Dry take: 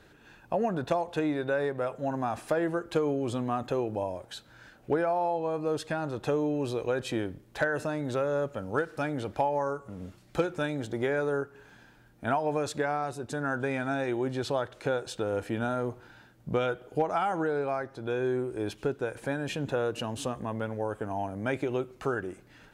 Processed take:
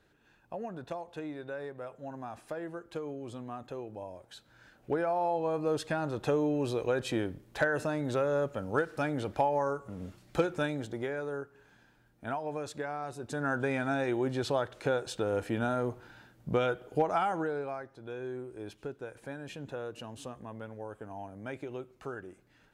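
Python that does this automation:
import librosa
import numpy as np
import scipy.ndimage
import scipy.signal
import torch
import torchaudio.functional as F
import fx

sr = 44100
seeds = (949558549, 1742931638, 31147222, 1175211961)

y = fx.gain(x, sr, db=fx.line((3.97, -11.0), (5.4, -0.5), (10.62, -0.5), (11.15, -7.5), (12.93, -7.5), (13.47, -0.5), (17.18, -0.5), (17.95, -10.0)))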